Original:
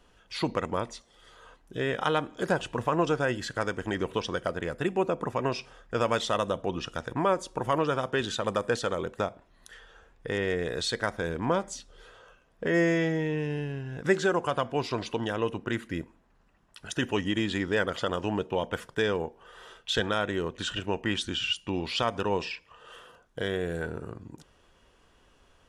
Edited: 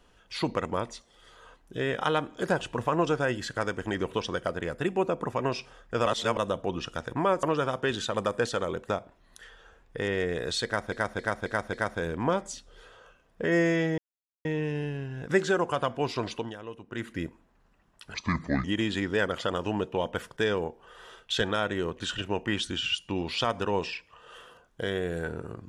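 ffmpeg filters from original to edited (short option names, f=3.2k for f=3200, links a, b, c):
-filter_complex "[0:a]asplit=13[a][b][c][d][e][f][g][h][i][j][k][l][m];[a]atrim=end=6.062[n];[b]atrim=start=6.058:end=6.372,asetpts=PTS-STARTPTS,areverse[o];[c]atrim=start=6.368:end=7.432[p];[d]atrim=start=7.728:end=11.222[q];[e]atrim=start=10.948:end=11.222[r];[f]atrim=start=10.948:end=11.222[s];[g]atrim=start=10.948:end=11.222[t];[h]atrim=start=10.948:end=13.2,asetpts=PTS-STARTPTS,afade=t=out:st=2.248:d=0.004:c=hsin,apad=pad_dur=0.47[u];[i]atrim=start=13.2:end=15.31,asetpts=PTS-STARTPTS,afade=t=in:d=0.004:c=hsin,afade=t=out:st=1.87:d=0.24:silence=0.251189[v];[j]atrim=start=15.31:end=15.62,asetpts=PTS-STARTPTS,volume=-12dB[w];[k]atrim=start=15.62:end=16.894,asetpts=PTS-STARTPTS,afade=t=in:d=0.24:silence=0.251189[x];[l]atrim=start=16.89:end=17.22,asetpts=PTS-STARTPTS,asetrate=29106,aresample=44100[y];[m]atrim=start=17.216[z];[n][o]acrossfade=d=0.004:c1=hsin:c2=hsin[aa];[aa][p]acrossfade=d=0.004:c1=hsin:c2=hsin[ab];[ab][q]acrossfade=d=0.004:c1=hsin:c2=hsin[ac];[ac][r]acrossfade=d=0.004:c1=hsin:c2=hsin[ad];[ad][s]acrossfade=d=0.004:c1=hsin:c2=hsin[ae];[ae][t]acrossfade=d=0.004:c1=hsin:c2=hsin[af];[u][v][w][x]concat=n=4:v=0:a=1[ag];[af][ag]acrossfade=d=0.004:c1=hsin:c2=hsin[ah];[ah][y]acrossfade=d=0.004:c1=hsin:c2=hsin[ai];[ai][z]acrossfade=d=0.004:c1=hsin:c2=hsin"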